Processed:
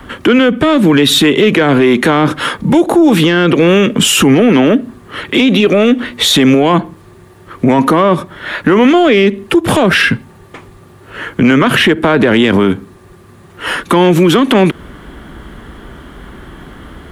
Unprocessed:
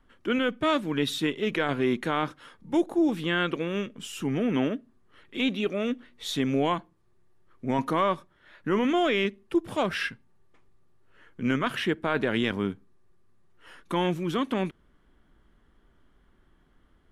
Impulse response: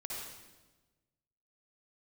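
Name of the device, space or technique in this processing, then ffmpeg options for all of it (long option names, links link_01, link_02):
mastering chain: -filter_complex "[0:a]highpass=48,equalizer=frequency=5400:width_type=o:width=0.57:gain=-3.5,acrossover=split=240|480[link_01][link_02][link_03];[link_01]acompressor=threshold=-39dB:ratio=4[link_04];[link_02]acompressor=threshold=-30dB:ratio=4[link_05];[link_03]acompressor=threshold=-33dB:ratio=4[link_06];[link_04][link_05][link_06]amix=inputs=3:normalize=0,acompressor=threshold=-34dB:ratio=2.5,asoftclip=type=tanh:threshold=-25.5dB,alimiter=level_in=34.5dB:limit=-1dB:release=50:level=0:latency=1,volume=-1dB"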